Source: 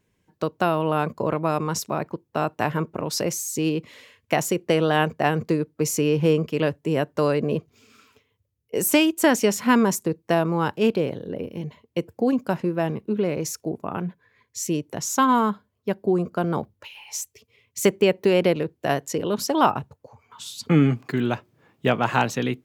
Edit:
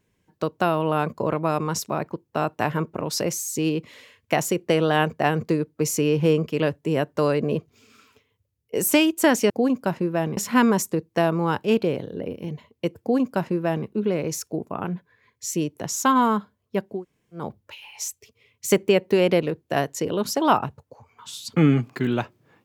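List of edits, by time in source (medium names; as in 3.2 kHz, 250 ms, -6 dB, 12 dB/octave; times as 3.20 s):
12.13–13.00 s: copy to 9.50 s
16.06–16.56 s: room tone, crossfade 0.24 s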